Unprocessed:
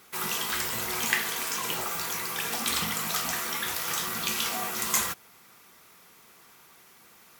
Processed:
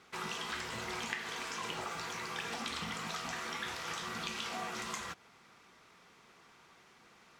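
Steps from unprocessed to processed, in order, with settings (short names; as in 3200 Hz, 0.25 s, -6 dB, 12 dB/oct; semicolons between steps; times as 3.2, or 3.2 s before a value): compressor, threshold -30 dBFS, peak gain reduction 10 dB; air absorption 100 m; gain -2.5 dB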